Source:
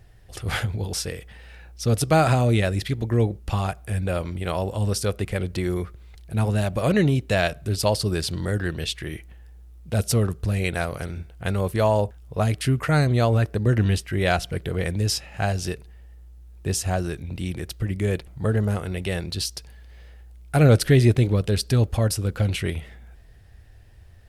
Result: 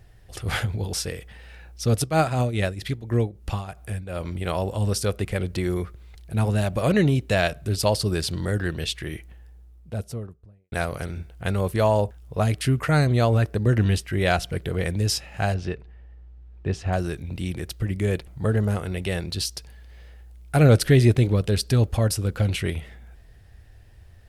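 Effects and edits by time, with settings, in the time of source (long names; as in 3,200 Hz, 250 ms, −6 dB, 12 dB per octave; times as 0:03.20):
0:01.95–0:04.29: shaped tremolo triangle 5.6 Hz → 2.1 Hz, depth 80%
0:09.12–0:10.72: fade out and dull
0:15.54–0:16.93: low-pass filter 2,700 Hz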